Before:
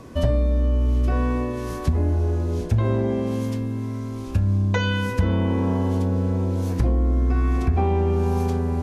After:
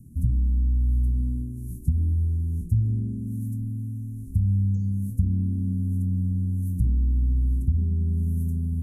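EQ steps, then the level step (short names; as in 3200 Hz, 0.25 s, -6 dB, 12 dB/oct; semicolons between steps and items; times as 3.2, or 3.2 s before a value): inverse Chebyshev band-stop 700–3200 Hz, stop band 70 dB; low shelf 290 Hz -6.5 dB; high shelf 5500 Hz -5 dB; +4.5 dB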